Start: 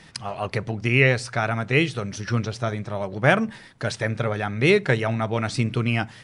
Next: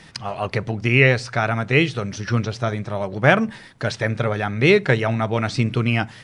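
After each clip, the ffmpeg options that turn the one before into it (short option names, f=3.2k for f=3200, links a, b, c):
-filter_complex "[0:a]acrossover=split=7200[a][b];[b]acompressor=threshold=-60dB:ratio=4:attack=1:release=60[c];[a][c]amix=inputs=2:normalize=0,volume=3dB"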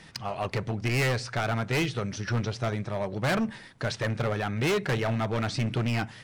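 -af "asoftclip=type=hard:threshold=-18.5dB,volume=-4.5dB"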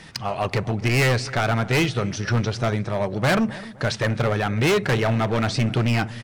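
-filter_complex "[0:a]asplit=2[a][b];[b]adelay=258,lowpass=f=1.4k:p=1,volume=-17.5dB,asplit=2[c][d];[d]adelay=258,lowpass=f=1.4k:p=1,volume=0.42,asplit=2[e][f];[f]adelay=258,lowpass=f=1.4k:p=1,volume=0.42[g];[a][c][e][g]amix=inputs=4:normalize=0,volume=6.5dB"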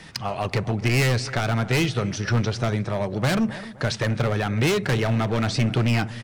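-filter_complex "[0:a]acrossover=split=330|3000[a][b][c];[b]acompressor=threshold=-24dB:ratio=6[d];[a][d][c]amix=inputs=3:normalize=0"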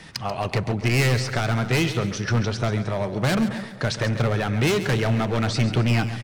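-af "aecho=1:1:137|274|411|548:0.251|0.098|0.0382|0.0149"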